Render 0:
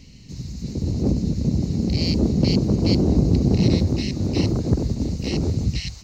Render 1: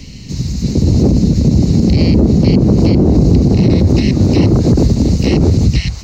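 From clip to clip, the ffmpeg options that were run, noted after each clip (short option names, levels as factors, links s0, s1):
-filter_complex "[0:a]acrossover=split=130|2300[s0][s1][s2];[s2]acompressor=threshold=0.00891:ratio=6[s3];[s0][s1][s3]amix=inputs=3:normalize=0,alimiter=level_in=5.62:limit=0.891:release=50:level=0:latency=1,volume=0.891"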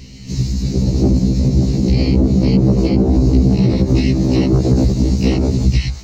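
-af "dynaudnorm=f=120:g=5:m=3.76,afftfilt=real='re*1.73*eq(mod(b,3),0)':imag='im*1.73*eq(mod(b,3),0)':win_size=2048:overlap=0.75,volume=0.75"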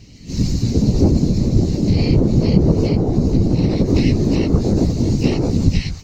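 -af "afftfilt=real='hypot(re,im)*cos(2*PI*random(0))':imag='hypot(re,im)*sin(2*PI*random(1))':win_size=512:overlap=0.75,dynaudnorm=f=240:g=3:m=3.55,volume=0.891"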